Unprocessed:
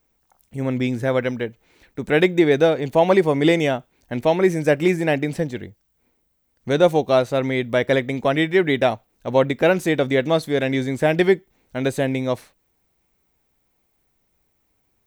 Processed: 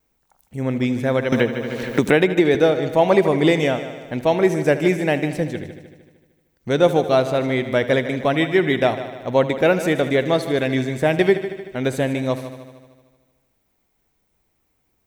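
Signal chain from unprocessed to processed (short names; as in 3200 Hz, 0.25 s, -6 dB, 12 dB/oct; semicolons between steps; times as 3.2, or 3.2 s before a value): vibrato 1 Hz 27 cents; on a send: multi-head echo 76 ms, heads first and second, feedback 57%, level -15 dB; 1.32–2.55 on the sum: three-band squash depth 100%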